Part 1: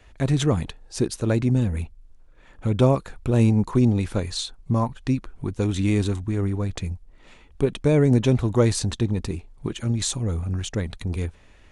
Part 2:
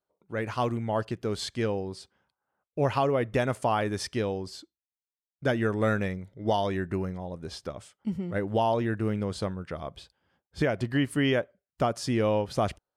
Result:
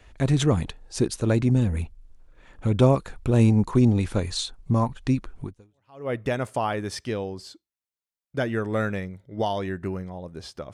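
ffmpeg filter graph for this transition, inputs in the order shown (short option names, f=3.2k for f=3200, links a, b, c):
-filter_complex "[0:a]apad=whole_dur=10.73,atrim=end=10.73,atrim=end=6.1,asetpts=PTS-STARTPTS[a];[1:a]atrim=start=2.5:end=7.81,asetpts=PTS-STARTPTS[b];[a][b]acrossfade=d=0.68:c1=exp:c2=exp"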